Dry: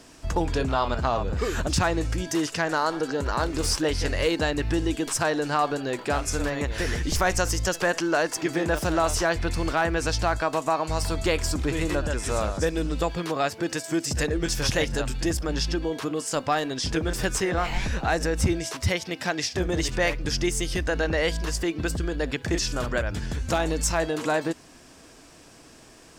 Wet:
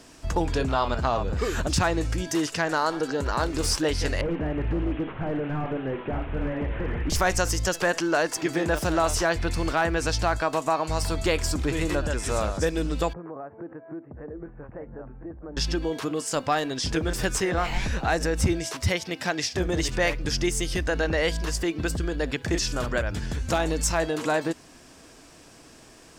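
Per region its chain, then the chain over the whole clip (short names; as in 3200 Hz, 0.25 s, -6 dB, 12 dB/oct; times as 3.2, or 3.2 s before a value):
4.21–7.1 delta modulation 16 kbps, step -41 dBFS + flutter echo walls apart 9 m, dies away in 0.29 s + hard clip -21 dBFS
13.13–15.57 compressor 4:1, threshold -31 dBFS + Gaussian blur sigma 7.2 samples + low shelf 160 Hz -10.5 dB
whole clip: dry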